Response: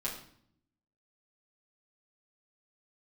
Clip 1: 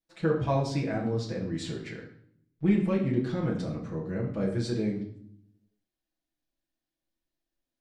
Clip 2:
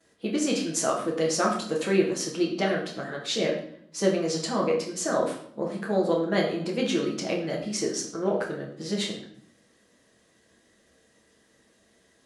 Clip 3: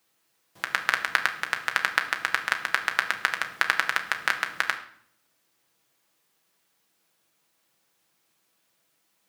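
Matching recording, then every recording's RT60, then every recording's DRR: 1; 0.60, 0.60, 0.60 seconds; −6.5, −16.0, 3.5 decibels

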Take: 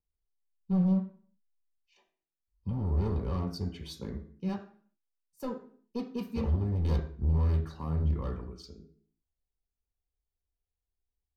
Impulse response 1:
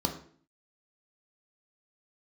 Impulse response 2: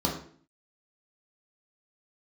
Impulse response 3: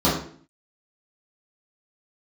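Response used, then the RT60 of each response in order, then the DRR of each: 1; 0.50, 0.50, 0.50 seconds; 3.5, −2.0, −9.5 decibels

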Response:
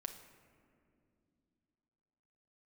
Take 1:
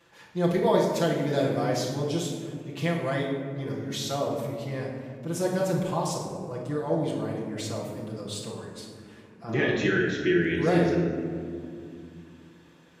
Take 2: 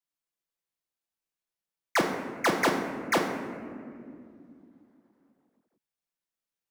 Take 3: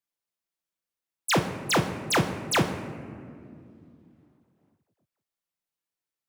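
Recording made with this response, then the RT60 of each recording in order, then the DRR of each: 3; 2.4, 2.4, 2.5 seconds; −5.5, 0.0, 5.0 decibels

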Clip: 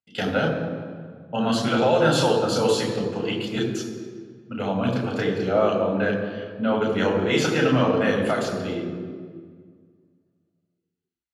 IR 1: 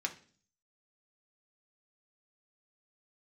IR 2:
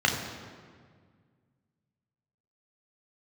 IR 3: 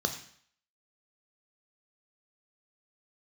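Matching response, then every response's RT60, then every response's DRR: 2; 0.45, 1.8, 0.60 seconds; 2.0, 0.0, 6.5 decibels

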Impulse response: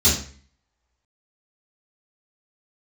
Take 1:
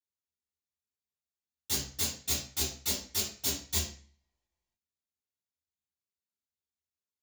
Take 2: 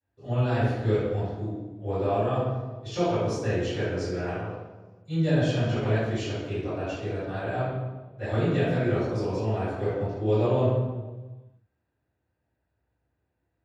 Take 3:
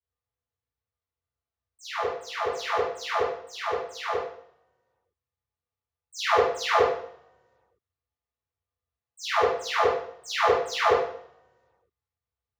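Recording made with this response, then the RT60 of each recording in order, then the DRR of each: 1; 0.45, 1.3, 0.65 seconds; −12.0, −21.0, −20.0 decibels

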